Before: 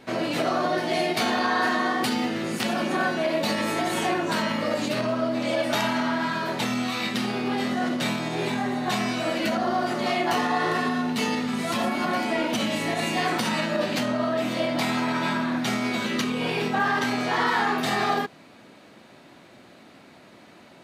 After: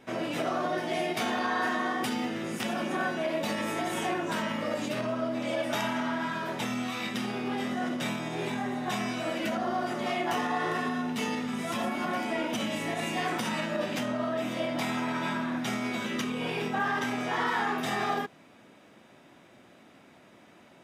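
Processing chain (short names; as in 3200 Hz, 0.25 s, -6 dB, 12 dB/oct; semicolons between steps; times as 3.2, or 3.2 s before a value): notch 4300 Hz, Q 5.2; gain -5.5 dB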